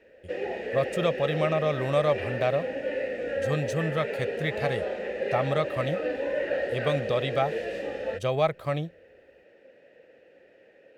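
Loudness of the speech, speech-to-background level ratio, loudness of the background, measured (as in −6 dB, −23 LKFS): −29.0 LKFS, 2.5 dB, −31.5 LKFS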